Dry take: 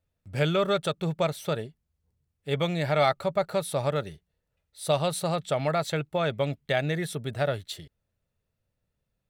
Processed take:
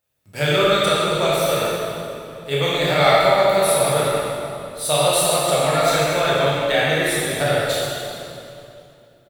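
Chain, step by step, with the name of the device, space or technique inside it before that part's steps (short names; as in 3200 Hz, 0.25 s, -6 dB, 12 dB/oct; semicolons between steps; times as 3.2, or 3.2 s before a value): RIAA curve recording; swimming-pool hall (reverb RT60 2.7 s, pre-delay 17 ms, DRR -7.5 dB; high shelf 4200 Hz -8 dB); frequency-shifting echo 0.213 s, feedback 60%, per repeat -110 Hz, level -21 dB; gain +3.5 dB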